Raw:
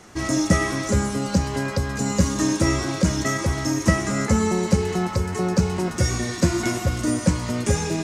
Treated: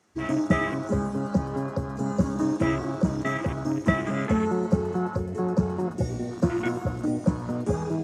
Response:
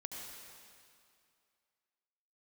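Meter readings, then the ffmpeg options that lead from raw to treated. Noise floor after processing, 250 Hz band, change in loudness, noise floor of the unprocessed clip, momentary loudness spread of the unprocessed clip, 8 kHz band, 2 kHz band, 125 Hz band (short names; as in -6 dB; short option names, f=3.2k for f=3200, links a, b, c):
-36 dBFS, -3.0 dB, -4.5 dB, -32 dBFS, 4 LU, -19.0 dB, -5.5 dB, -5.0 dB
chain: -filter_complex "[0:a]afwtdn=0.0398,highpass=110,asplit=2[a][b];[1:a]atrim=start_sample=2205,adelay=31[c];[b][c]afir=irnorm=-1:irlink=0,volume=-14.5dB[d];[a][d]amix=inputs=2:normalize=0,volume=-2.5dB"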